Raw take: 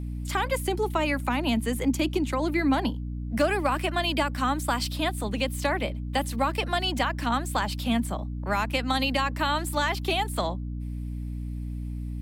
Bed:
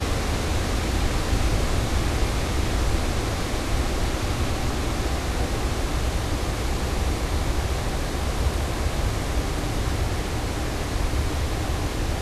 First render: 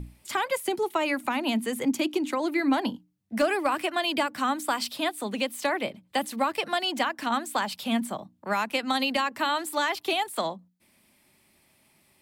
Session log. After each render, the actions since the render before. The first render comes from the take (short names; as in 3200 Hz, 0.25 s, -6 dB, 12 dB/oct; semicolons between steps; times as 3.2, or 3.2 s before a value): notches 60/120/180/240/300 Hz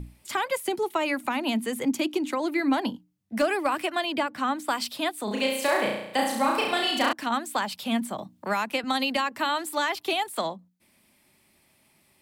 4.03–4.67 high shelf 3800 Hz -> 6200 Hz -9 dB; 5.24–7.13 flutter echo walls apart 5.8 m, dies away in 0.8 s; 8.18–8.84 three-band squash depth 40%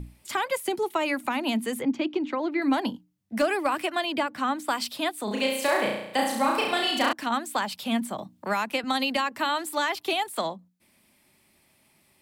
1.81–2.62 air absorption 210 m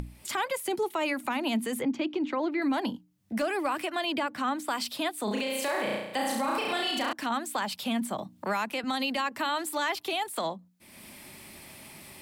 upward compressor, threshold -33 dBFS; limiter -21 dBFS, peak gain reduction 9.5 dB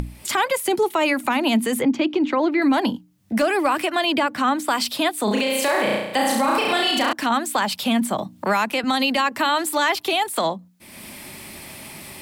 gain +9.5 dB